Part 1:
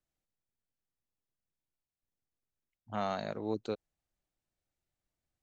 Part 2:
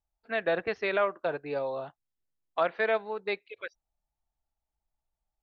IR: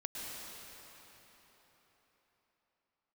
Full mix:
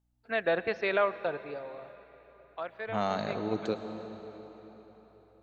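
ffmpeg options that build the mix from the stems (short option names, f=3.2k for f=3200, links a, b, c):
-filter_complex "[0:a]aeval=exprs='val(0)+0.000398*(sin(2*PI*60*n/s)+sin(2*PI*2*60*n/s)/2+sin(2*PI*3*60*n/s)/3+sin(2*PI*4*60*n/s)/4+sin(2*PI*5*60*n/s)/5)':c=same,volume=1dB,asplit=2[a][b];[b]volume=-4.5dB[c];[1:a]volume=-1dB,afade=t=out:st=1.17:d=0.45:silence=0.281838,asplit=3[d][e][f];[e]volume=-14dB[g];[f]apad=whole_len=239129[h];[a][h]sidechaingate=range=-33dB:threshold=-59dB:ratio=16:detection=peak[i];[2:a]atrim=start_sample=2205[j];[c][g]amix=inputs=2:normalize=0[k];[k][j]afir=irnorm=-1:irlink=0[l];[i][d][l]amix=inputs=3:normalize=0"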